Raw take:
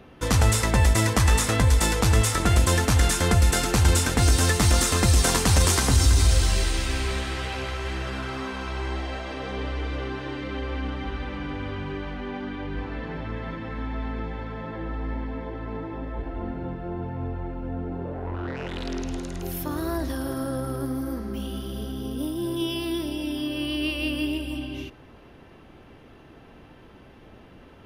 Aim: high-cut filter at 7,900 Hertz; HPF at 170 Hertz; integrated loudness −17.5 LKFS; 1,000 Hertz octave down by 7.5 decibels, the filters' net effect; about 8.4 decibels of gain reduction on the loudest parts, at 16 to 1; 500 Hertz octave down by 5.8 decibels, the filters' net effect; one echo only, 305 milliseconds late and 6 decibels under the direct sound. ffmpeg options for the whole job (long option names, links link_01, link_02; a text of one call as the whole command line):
ffmpeg -i in.wav -af "highpass=170,lowpass=7900,equalizer=frequency=500:width_type=o:gain=-5.5,equalizer=frequency=1000:width_type=o:gain=-8.5,acompressor=threshold=-30dB:ratio=16,aecho=1:1:305:0.501,volume=17dB" out.wav